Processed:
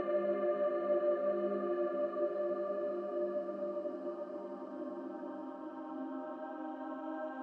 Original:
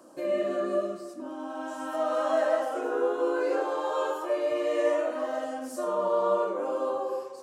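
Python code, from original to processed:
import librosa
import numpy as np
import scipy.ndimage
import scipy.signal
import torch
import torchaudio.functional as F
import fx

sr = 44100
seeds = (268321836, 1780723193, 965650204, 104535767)

y = scipy.signal.sosfilt(scipy.signal.butter(2, 2200.0, 'lowpass', fs=sr, output='sos'), x)
y = fx.paulstretch(y, sr, seeds[0], factor=8.1, window_s=1.0, from_s=0.58)
y = y * 10.0 ** (-5.5 / 20.0)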